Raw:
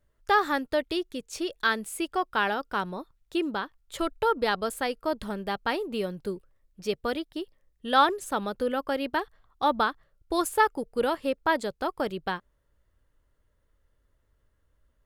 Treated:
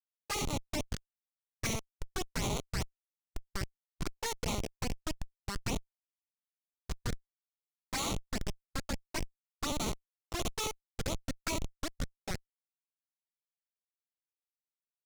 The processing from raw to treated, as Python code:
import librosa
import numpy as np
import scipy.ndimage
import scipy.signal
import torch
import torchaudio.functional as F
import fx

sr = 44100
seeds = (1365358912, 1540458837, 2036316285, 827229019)

p1 = fx.block_float(x, sr, bits=5)
p2 = scipy.signal.sosfilt(scipy.signal.butter(2, 660.0, 'highpass', fs=sr, output='sos'), p1)
p3 = p2 + fx.room_flutter(p2, sr, wall_m=10.6, rt60_s=0.51, dry=0)
p4 = fx.schmitt(p3, sr, flips_db=-24.0)
p5 = fx.formant_shift(p4, sr, semitones=5)
p6 = fx.peak_eq(p5, sr, hz=6000.0, db=8.5, octaves=1.6)
y = fx.env_flanger(p6, sr, rest_ms=11.8, full_db=-28.5)